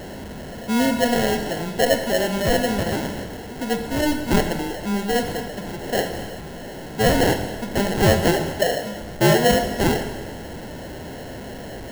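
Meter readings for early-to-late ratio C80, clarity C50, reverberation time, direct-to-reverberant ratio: 9.0 dB, 8.0 dB, 1.4 s, 6.5 dB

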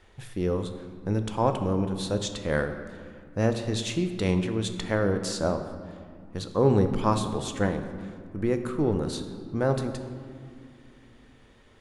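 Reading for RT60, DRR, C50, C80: 2.4 s, 7.0 dB, 9.0 dB, 10.0 dB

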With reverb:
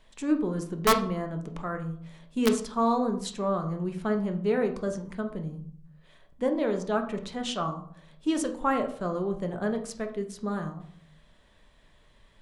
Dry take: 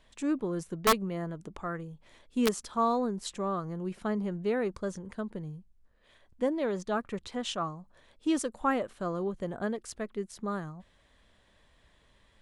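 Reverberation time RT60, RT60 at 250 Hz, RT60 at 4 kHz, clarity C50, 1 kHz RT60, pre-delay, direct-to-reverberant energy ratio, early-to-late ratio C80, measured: 0.55 s, 0.80 s, 0.35 s, 10.5 dB, 0.55 s, 4 ms, 5.0 dB, 14.5 dB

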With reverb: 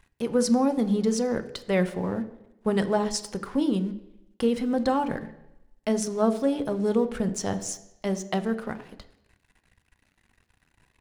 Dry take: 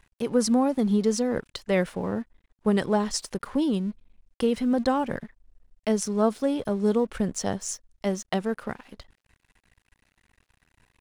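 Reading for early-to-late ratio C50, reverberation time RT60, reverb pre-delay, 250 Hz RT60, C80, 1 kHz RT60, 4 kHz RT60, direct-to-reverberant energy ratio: 14.0 dB, 0.90 s, 8 ms, 0.85 s, 16.5 dB, 0.90 s, 0.90 s, 9.0 dB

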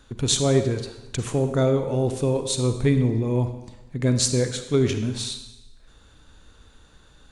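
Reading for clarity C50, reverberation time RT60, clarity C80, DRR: 8.5 dB, 1.0 s, 10.5 dB, 7.5 dB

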